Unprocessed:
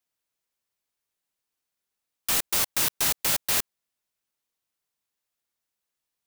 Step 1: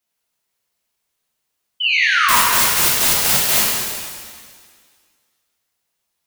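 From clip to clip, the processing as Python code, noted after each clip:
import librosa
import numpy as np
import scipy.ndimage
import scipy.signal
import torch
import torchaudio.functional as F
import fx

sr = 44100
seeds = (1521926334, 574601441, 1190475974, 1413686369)

y = fx.spec_paint(x, sr, seeds[0], shape='fall', start_s=1.8, length_s=0.57, low_hz=910.0, high_hz=3100.0, level_db=-25.0)
y = fx.rev_shimmer(y, sr, seeds[1], rt60_s=1.7, semitones=7, shimmer_db=-8, drr_db=-4.5)
y = y * librosa.db_to_amplitude(4.0)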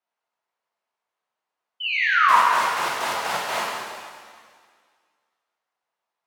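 y = fx.bandpass_q(x, sr, hz=910.0, q=1.3)
y = y * librosa.db_to_amplitude(2.5)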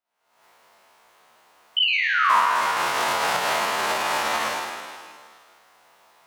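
y = fx.spec_steps(x, sr, hold_ms=50)
y = fx.recorder_agc(y, sr, target_db=-13.5, rise_db_per_s=67.0, max_gain_db=30)
y = y * librosa.db_to_amplitude(-1.0)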